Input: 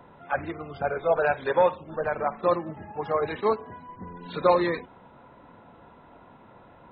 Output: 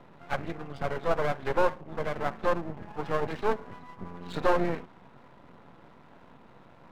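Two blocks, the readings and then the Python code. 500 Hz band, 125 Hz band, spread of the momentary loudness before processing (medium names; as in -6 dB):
-5.0 dB, +1.5 dB, 14 LU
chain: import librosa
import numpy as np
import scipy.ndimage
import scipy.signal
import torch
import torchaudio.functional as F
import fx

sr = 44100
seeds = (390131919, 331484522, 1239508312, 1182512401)

y = scipy.signal.sosfilt(scipy.signal.butter(4, 110.0, 'highpass', fs=sr, output='sos'), x)
y = fx.env_lowpass_down(y, sr, base_hz=1400.0, full_db=-21.5)
y = fx.bass_treble(y, sr, bass_db=7, treble_db=7)
y = np.maximum(y, 0.0)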